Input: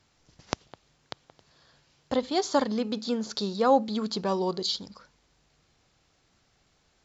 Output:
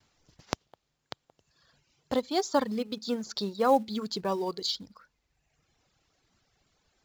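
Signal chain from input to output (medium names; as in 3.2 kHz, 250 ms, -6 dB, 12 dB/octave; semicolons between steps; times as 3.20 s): gate with hold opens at -59 dBFS; reverb removal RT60 1.2 s; in parallel at -4 dB: short-mantissa float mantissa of 2-bit; on the sum: trim -5.5 dB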